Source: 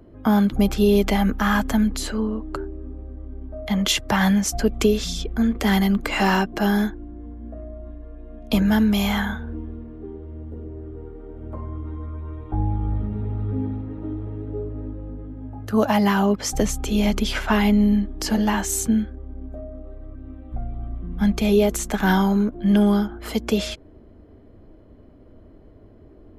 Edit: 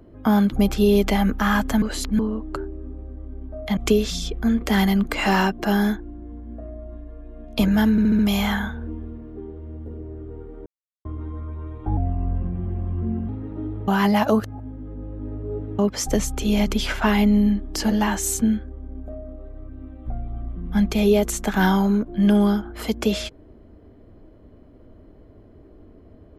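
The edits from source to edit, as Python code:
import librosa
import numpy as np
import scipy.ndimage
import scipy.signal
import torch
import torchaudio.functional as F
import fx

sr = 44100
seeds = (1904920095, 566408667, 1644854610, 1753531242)

y = fx.edit(x, sr, fx.reverse_span(start_s=1.82, length_s=0.37),
    fx.cut(start_s=3.77, length_s=0.94),
    fx.stutter(start_s=8.85, slice_s=0.07, count=5),
    fx.silence(start_s=11.32, length_s=0.39),
    fx.speed_span(start_s=12.63, length_s=1.12, speed=0.85),
    fx.reverse_span(start_s=14.34, length_s=1.91), tone=tone)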